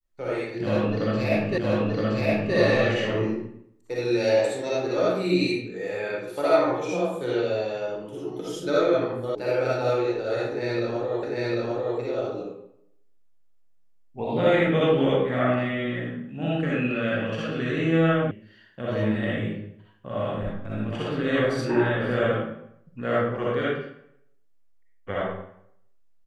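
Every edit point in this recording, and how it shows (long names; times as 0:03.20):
0:01.58: the same again, the last 0.97 s
0:09.35: cut off before it has died away
0:11.23: the same again, the last 0.75 s
0:18.31: cut off before it has died away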